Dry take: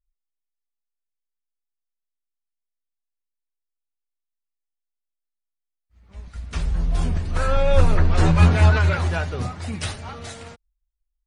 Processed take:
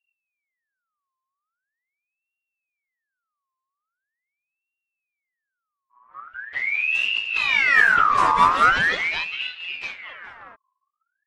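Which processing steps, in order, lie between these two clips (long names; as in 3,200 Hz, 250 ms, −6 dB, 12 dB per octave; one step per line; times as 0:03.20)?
low-pass that shuts in the quiet parts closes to 720 Hz, open at −12 dBFS
ring modulator whose carrier an LFO sweeps 1,900 Hz, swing 45%, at 0.42 Hz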